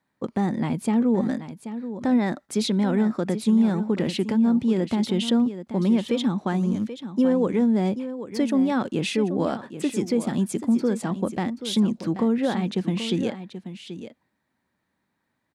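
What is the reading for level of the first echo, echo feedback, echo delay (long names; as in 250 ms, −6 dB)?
−11.5 dB, repeats not evenly spaced, 782 ms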